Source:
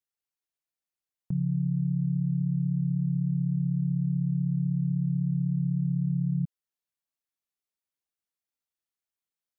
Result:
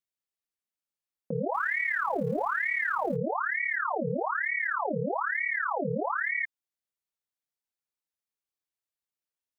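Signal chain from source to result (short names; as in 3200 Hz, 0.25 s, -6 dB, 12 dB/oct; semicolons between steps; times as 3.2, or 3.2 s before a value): 1.54–3.16 G.711 law mismatch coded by mu; ring modulator with a swept carrier 1200 Hz, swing 75%, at 1.1 Hz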